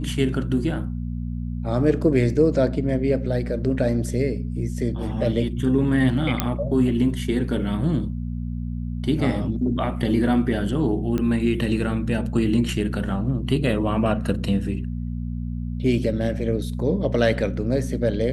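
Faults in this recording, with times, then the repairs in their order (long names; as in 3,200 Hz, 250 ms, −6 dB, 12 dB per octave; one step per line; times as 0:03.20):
mains hum 60 Hz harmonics 4 −28 dBFS
0:06.40: click −5 dBFS
0:11.18: click −14 dBFS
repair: click removal
hum removal 60 Hz, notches 4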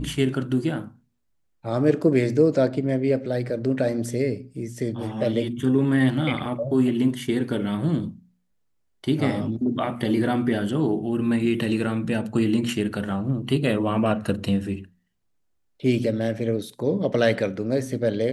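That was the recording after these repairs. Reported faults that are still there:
none of them is left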